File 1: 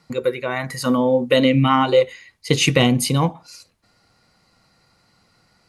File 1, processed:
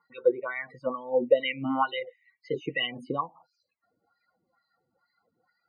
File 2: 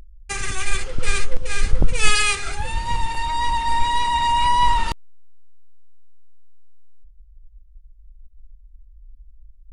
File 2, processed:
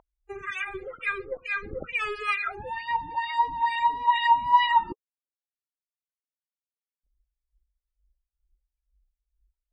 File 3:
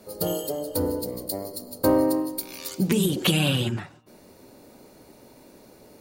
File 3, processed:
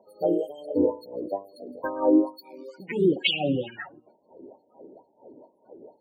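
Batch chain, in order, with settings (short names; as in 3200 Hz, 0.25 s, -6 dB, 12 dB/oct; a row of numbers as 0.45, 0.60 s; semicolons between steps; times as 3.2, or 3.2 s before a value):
loudest bins only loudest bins 32; wah 2.2 Hz 320–2500 Hz, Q 3.2; normalise peaks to -9 dBFS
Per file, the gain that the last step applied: -0.5, +6.0, +9.5 dB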